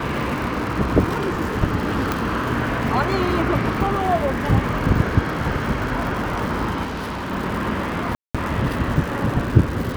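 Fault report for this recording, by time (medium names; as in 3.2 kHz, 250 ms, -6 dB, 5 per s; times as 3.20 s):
crackle 190 per s -27 dBFS
2.12 s: pop
6.83–7.32 s: clipped -24.5 dBFS
8.15–8.35 s: dropout 196 ms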